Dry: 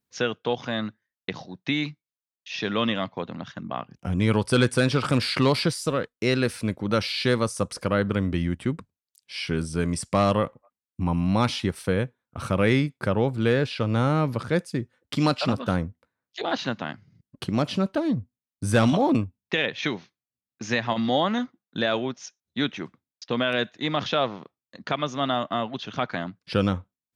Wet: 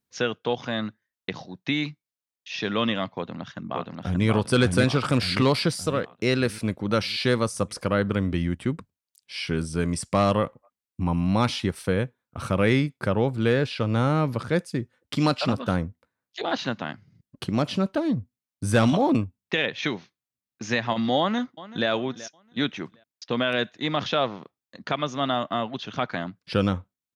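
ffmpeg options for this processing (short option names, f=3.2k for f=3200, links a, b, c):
-filter_complex "[0:a]asplit=2[a][b];[b]afade=t=in:st=3.13:d=0.01,afade=t=out:st=4.26:d=0.01,aecho=0:1:580|1160|1740|2320|2900|3480|4060:0.749894|0.374947|0.187474|0.0937368|0.0468684|0.0234342|0.0117171[c];[a][c]amix=inputs=2:normalize=0,asplit=2[d][e];[e]afade=t=in:st=21.19:d=0.01,afade=t=out:st=21.89:d=0.01,aecho=0:1:380|760|1140:0.141254|0.0494388|0.0173036[f];[d][f]amix=inputs=2:normalize=0"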